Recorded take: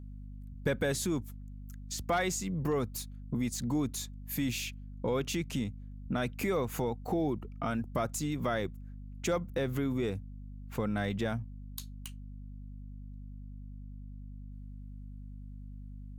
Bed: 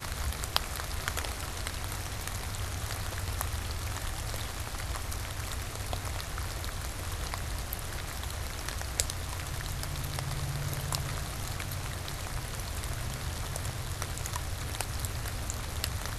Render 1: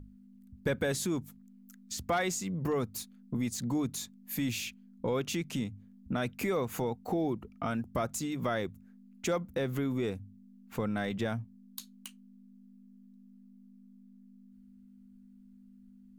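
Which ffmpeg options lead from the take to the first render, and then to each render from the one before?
-af "bandreject=f=50:t=h:w=6,bandreject=f=100:t=h:w=6,bandreject=f=150:t=h:w=6"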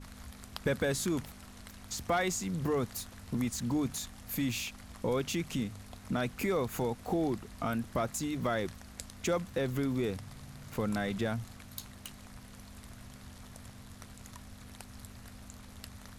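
-filter_complex "[1:a]volume=-15dB[a];[0:a][a]amix=inputs=2:normalize=0"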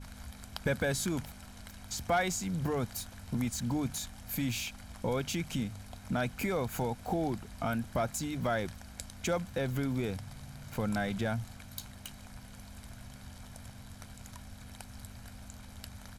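-af "aecho=1:1:1.3:0.36"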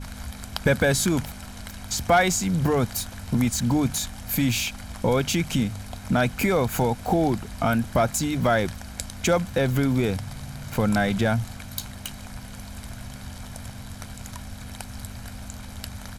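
-af "volume=10.5dB"

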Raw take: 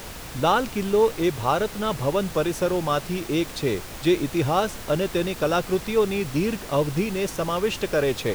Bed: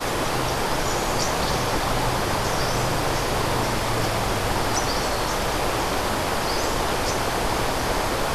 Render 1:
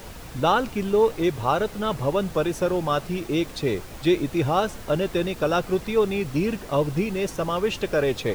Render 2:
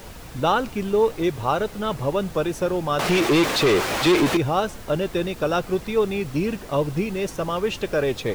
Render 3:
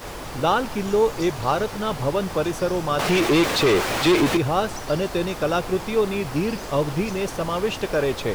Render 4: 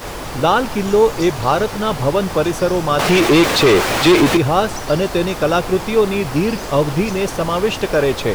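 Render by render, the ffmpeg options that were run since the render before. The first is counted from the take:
-af "afftdn=nr=6:nf=-38"
-filter_complex "[0:a]asettb=1/sr,asplit=3[a][b][c];[a]atrim=end=2.994[d];[b]atrim=start=2.99:end=4.37,asetpts=PTS-STARTPTS,afade=t=in:d=0.004:c=qsin,afade=t=out:st=1.376:d=0.004:c=qsin,asplit=2[e][f];[f]highpass=f=720:p=1,volume=30dB,asoftclip=type=tanh:threshold=-10dB[g];[e][g]amix=inputs=2:normalize=0,lowpass=f=3.5k:p=1,volume=-6dB[h];[c]atrim=start=4.366[i];[d][h]acrossfade=d=0.004:c1=hsin:c2=qsin[j];[j][i]acrossfade=d=0.004:c1=qsin:c2=hsin"
-filter_complex "[1:a]volume=-11.5dB[a];[0:a][a]amix=inputs=2:normalize=0"
-af "volume=6.5dB,alimiter=limit=-3dB:level=0:latency=1"

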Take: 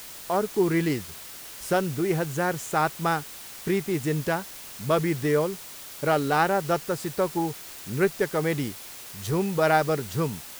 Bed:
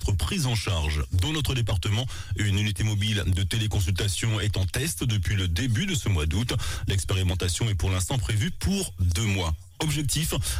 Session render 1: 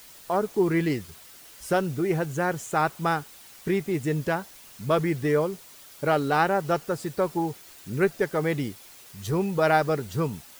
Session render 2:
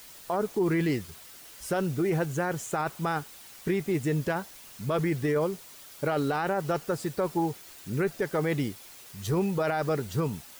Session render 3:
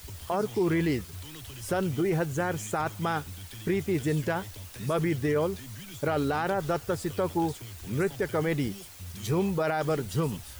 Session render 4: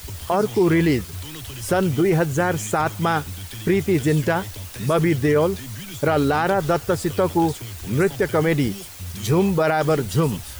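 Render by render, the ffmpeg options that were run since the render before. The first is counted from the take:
-af "afftdn=nr=8:nf=-42"
-af "alimiter=limit=-19dB:level=0:latency=1:release=16"
-filter_complex "[1:a]volume=-18.5dB[a];[0:a][a]amix=inputs=2:normalize=0"
-af "volume=8.5dB"

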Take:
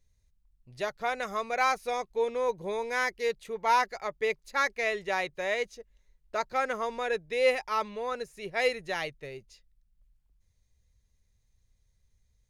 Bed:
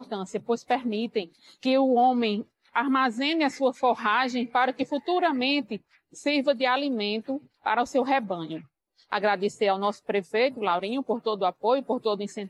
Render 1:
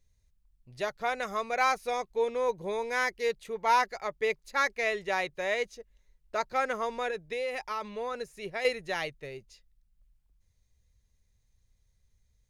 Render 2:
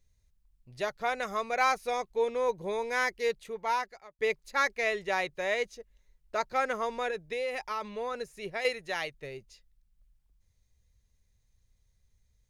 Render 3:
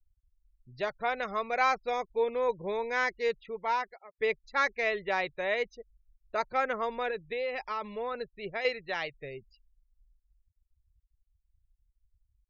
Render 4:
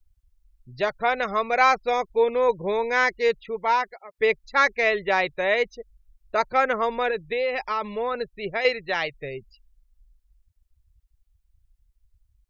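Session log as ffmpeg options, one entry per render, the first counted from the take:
-filter_complex "[0:a]asettb=1/sr,asplit=3[a][b][c];[a]atrim=end=7.084[d];[b]atrim=start=7.08:end=8.65,asetpts=PTS-STARTPTS,afade=t=in:d=0.004:c=qsin,afade=t=out:st=1.566:d=0.004:c=qsin,acompressor=threshold=-29dB:ratio=10:attack=3.2:release=140:knee=1:detection=peak[e];[c]atrim=start=8.646[f];[d][e]acrossfade=d=0.004:c1=hsin:c2=qsin[g];[g][f]acrossfade=d=0.004:c1=qsin:c2=hsin"
-filter_complex "[0:a]asettb=1/sr,asplit=3[a][b][c];[a]atrim=end=8.614[d];[b]atrim=start=8.61:end=9.14,asetpts=PTS-STARTPTS,afade=t=in:d=0.004:c=qsin,afade=t=out:st=0.526:d=0.004:c=qsin,lowshelf=f=400:g=-6[e];[c]atrim=start=9.136[f];[d][e]acrossfade=d=0.004:c1=hsin:c2=qsin[g];[g][f]acrossfade=d=0.004:c1=qsin:c2=hsin,asplit=2[h][i];[h]atrim=end=4.19,asetpts=PTS-STARTPTS,afade=t=out:st=3.33:d=0.86[j];[i]atrim=start=4.19,asetpts=PTS-STARTPTS,afade=t=in:d=0.004:c=hsin[k];[j][k]concat=n=2:v=0:a=1"
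-af "lowpass=4.8k,afftfilt=real='re*gte(hypot(re,im),0.00355)':imag='im*gte(hypot(re,im),0.00355)':win_size=1024:overlap=0.75"
-af "volume=8dB"

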